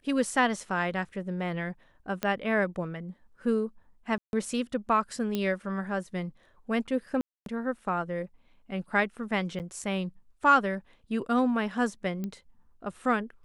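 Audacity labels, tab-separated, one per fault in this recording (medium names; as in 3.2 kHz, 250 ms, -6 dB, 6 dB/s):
2.230000	2.230000	pop -14 dBFS
4.180000	4.330000	dropout 151 ms
5.350000	5.350000	pop -16 dBFS
7.210000	7.460000	dropout 252 ms
9.590000	9.600000	dropout 8.8 ms
12.240000	12.240000	pop -22 dBFS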